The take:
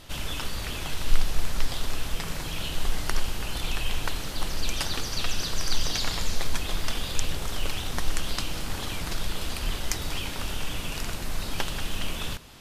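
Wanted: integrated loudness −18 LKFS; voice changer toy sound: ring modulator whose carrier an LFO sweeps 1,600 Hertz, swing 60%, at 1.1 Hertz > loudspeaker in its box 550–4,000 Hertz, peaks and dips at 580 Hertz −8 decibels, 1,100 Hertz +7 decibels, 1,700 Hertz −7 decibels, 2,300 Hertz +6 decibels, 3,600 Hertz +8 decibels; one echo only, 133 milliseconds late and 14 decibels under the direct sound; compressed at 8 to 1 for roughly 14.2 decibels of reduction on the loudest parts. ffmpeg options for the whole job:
ffmpeg -i in.wav -af "acompressor=threshold=-25dB:ratio=8,aecho=1:1:133:0.2,aeval=exprs='val(0)*sin(2*PI*1600*n/s+1600*0.6/1.1*sin(2*PI*1.1*n/s))':channel_layout=same,highpass=550,equalizer=frequency=580:width_type=q:width=4:gain=-8,equalizer=frequency=1100:width_type=q:width=4:gain=7,equalizer=frequency=1700:width_type=q:width=4:gain=-7,equalizer=frequency=2300:width_type=q:width=4:gain=6,equalizer=frequency=3600:width_type=q:width=4:gain=8,lowpass=frequency=4000:width=0.5412,lowpass=frequency=4000:width=1.3066,volume=9.5dB" out.wav

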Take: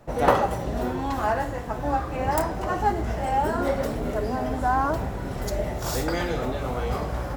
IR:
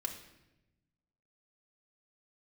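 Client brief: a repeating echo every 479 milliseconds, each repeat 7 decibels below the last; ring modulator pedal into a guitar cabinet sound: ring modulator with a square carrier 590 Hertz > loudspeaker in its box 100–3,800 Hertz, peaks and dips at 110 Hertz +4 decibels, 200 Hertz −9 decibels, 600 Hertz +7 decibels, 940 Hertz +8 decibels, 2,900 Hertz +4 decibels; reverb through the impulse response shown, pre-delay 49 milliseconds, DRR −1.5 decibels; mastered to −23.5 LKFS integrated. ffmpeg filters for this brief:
-filter_complex "[0:a]aecho=1:1:479|958|1437|1916|2395:0.447|0.201|0.0905|0.0407|0.0183,asplit=2[link_01][link_02];[1:a]atrim=start_sample=2205,adelay=49[link_03];[link_02][link_03]afir=irnorm=-1:irlink=0,volume=1dB[link_04];[link_01][link_04]amix=inputs=2:normalize=0,aeval=exprs='val(0)*sgn(sin(2*PI*590*n/s))':channel_layout=same,highpass=100,equalizer=frequency=110:width_type=q:width=4:gain=4,equalizer=frequency=200:width_type=q:width=4:gain=-9,equalizer=frequency=600:width_type=q:width=4:gain=7,equalizer=frequency=940:width_type=q:width=4:gain=8,equalizer=frequency=2900:width_type=q:width=4:gain=4,lowpass=frequency=3800:width=0.5412,lowpass=frequency=3800:width=1.3066,volume=-5.5dB"

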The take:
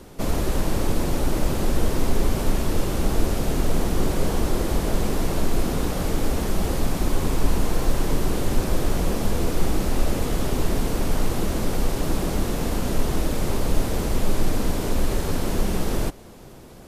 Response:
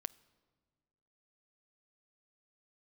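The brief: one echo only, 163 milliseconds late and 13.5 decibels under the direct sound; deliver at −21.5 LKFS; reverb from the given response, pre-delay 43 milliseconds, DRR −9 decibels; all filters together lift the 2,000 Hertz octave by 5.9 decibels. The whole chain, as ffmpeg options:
-filter_complex "[0:a]equalizer=frequency=2000:width_type=o:gain=7.5,aecho=1:1:163:0.211,asplit=2[link_01][link_02];[1:a]atrim=start_sample=2205,adelay=43[link_03];[link_02][link_03]afir=irnorm=-1:irlink=0,volume=12dB[link_04];[link_01][link_04]amix=inputs=2:normalize=0,volume=-6dB"

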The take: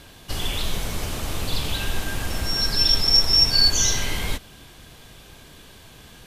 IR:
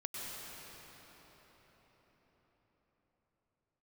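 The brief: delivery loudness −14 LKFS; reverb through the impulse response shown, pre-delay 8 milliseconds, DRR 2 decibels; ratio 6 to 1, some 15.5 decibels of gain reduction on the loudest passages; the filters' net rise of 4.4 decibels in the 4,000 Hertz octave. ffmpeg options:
-filter_complex "[0:a]equalizer=frequency=4000:width_type=o:gain=6.5,acompressor=threshold=-26dB:ratio=6,asplit=2[link_01][link_02];[1:a]atrim=start_sample=2205,adelay=8[link_03];[link_02][link_03]afir=irnorm=-1:irlink=0,volume=-3.5dB[link_04];[link_01][link_04]amix=inputs=2:normalize=0,volume=13dB"

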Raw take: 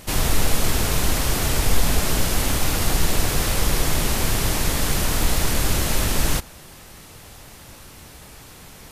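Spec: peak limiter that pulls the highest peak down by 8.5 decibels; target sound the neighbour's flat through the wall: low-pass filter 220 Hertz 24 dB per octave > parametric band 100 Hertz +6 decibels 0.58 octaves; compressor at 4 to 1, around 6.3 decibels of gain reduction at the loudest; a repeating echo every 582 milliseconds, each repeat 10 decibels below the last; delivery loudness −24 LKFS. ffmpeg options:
ffmpeg -i in.wav -af "acompressor=threshold=-18dB:ratio=4,alimiter=limit=-17.5dB:level=0:latency=1,lowpass=frequency=220:width=0.5412,lowpass=frequency=220:width=1.3066,equalizer=frequency=100:width_type=o:width=0.58:gain=6,aecho=1:1:582|1164|1746|2328:0.316|0.101|0.0324|0.0104,volume=9dB" out.wav

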